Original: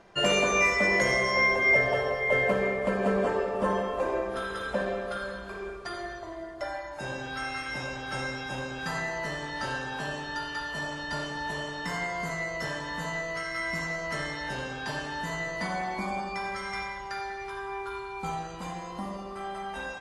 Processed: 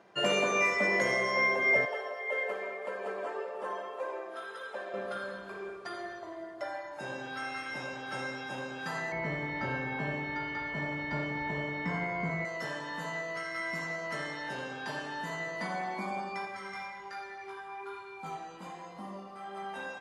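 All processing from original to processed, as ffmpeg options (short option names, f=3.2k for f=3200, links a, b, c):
-filter_complex "[0:a]asettb=1/sr,asplit=3[a][b][c];[a]atrim=end=1.854[d];[b]atrim=start=1.85:end=4.94,asetpts=PTS-STARTPTS,afade=t=in:d=0.004:c=qsin,afade=t=out:st=3.086:d=0.004:c=qsin,highpass=470,flanger=delay=1.8:depth=1.4:regen=55:speed=1.8:shape=triangular[e];[c]atrim=start=4.936[f];[d][e]acrossfade=d=0.004:c1=hsin:c2=qsin[g];[g][f]acrossfade=d=0.004:c1=qsin:c2=hsin,asettb=1/sr,asplit=3[h][i][j];[h]atrim=end=9.124[k];[i]atrim=start=9.12:end=12.45,asetpts=PTS-STARTPTS,afade=t=in:d=0.004:c=qsin,afade=t=out:st=3.326:d=0.004:c=qsin,lowpass=9.3k,aemphasis=mode=reproduction:type=riaa,aeval=exprs='val(0)+0.02*sin(2*PI*2200*n/s)':c=same[l];[j]atrim=start=12.446[m];[k][l]acrossfade=d=0.004:c1=hsin:c2=qsin[n];[n][m]acrossfade=d=0.004:c1=qsin:c2=hsin,asettb=1/sr,asplit=3[o][p][q];[o]atrim=end=16.454[r];[p]atrim=start=16.45:end=19.57,asetpts=PTS-STARTPTS,afade=t=in:d=0.004:c=qsin,afade=t=out:st=3.116:d=0.004:c=qsin,flanger=delay=18.5:depth=3.4:speed=1.2,asoftclip=type=hard:threshold=-29dB[s];[q]atrim=start=19.566[t];[r][s]acrossfade=d=0.004:c1=hsin:c2=qsin[u];[u][t]acrossfade=d=0.004:c1=qsin:c2=hsin,highpass=170,equalizer=f=7.2k:t=o:w=2:g=-4,volume=-3dB"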